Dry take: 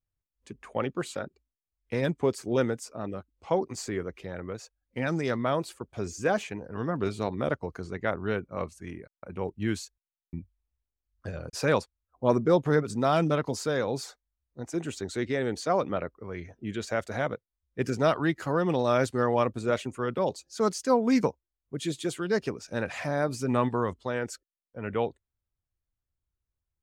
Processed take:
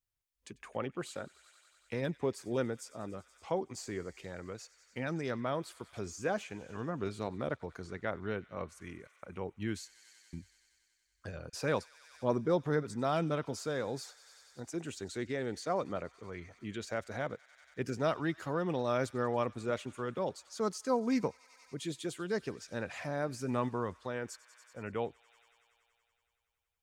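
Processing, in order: feedback echo behind a high-pass 94 ms, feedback 81%, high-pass 1.7 kHz, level -20 dB; tape noise reduction on one side only encoder only; trim -7.5 dB

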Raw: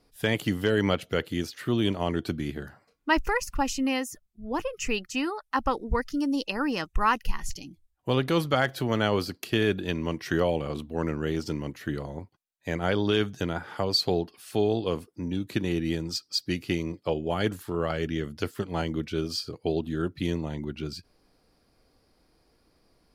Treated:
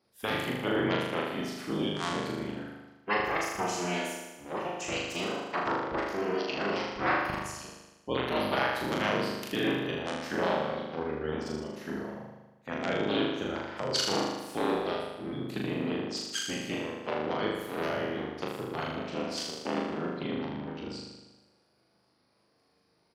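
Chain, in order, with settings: cycle switcher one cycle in 3, inverted; Bessel high-pass 180 Hz, order 2; spectral gate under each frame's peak -25 dB strong; doubling 24 ms -11 dB; flutter echo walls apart 6.7 m, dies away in 1.1 s; trim -7 dB

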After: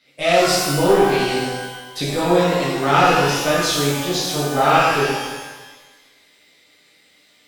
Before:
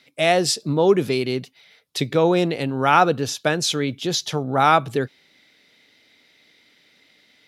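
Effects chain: valve stage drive 9 dB, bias 0.6; pitch-shifted reverb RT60 1.2 s, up +12 st, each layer -8 dB, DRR -9 dB; trim -4.5 dB

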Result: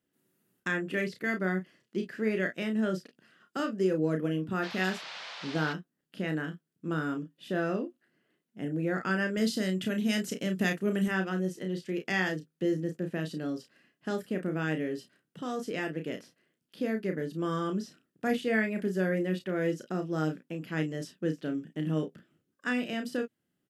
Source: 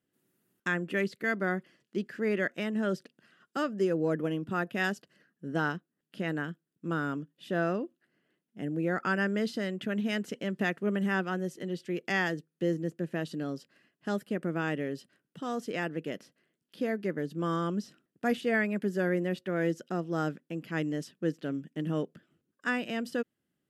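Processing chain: 9.37–11.08 s: tone controls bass +4 dB, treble +10 dB; early reflections 32 ms -6 dB, 49 ms -16.5 dB; dynamic bell 960 Hz, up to -4 dB, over -40 dBFS, Q 1; 4.62–5.72 s: band noise 560–4500 Hz -43 dBFS

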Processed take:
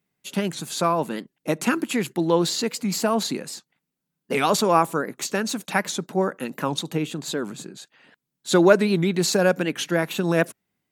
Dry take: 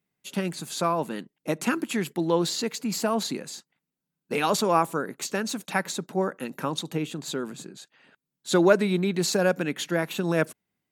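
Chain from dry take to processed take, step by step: warped record 78 rpm, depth 160 cents; trim +3.5 dB

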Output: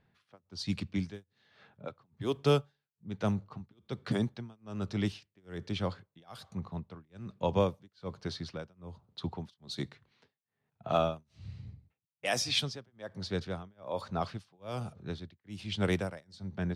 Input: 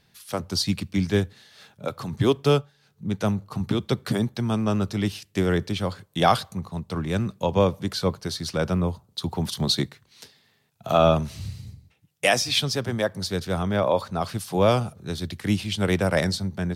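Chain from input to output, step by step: level-controlled noise filter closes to 1.8 kHz, open at -16 dBFS; tremolo 1.2 Hz, depth 99%; trim -6 dB

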